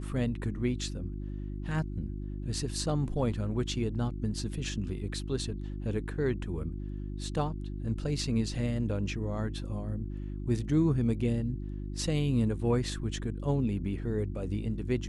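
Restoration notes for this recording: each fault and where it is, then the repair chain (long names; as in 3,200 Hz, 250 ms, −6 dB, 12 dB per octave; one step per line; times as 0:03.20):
mains hum 50 Hz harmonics 7 −37 dBFS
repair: hum removal 50 Hz, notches 7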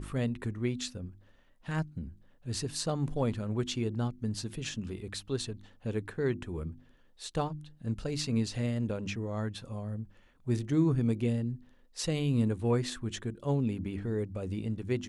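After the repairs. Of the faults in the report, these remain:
none of them is left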